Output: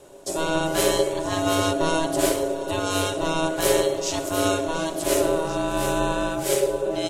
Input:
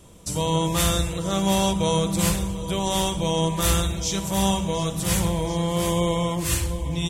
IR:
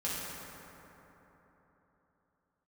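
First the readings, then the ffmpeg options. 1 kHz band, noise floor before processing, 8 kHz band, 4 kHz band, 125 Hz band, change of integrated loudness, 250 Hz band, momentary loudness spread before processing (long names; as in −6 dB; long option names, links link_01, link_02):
+0.5 dB, −31 dBFS, −1.5 dB, −2.0 dB, −9.0 dB, 0.0 dB, −2.0 dB, 5 LU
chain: -af "equalizer=frequency=85:width=4.2:gain=14.5,aeval=exprs='val(0)*sin(2*PI*480*n/s)':channel_layout=same,volume=1.5dB"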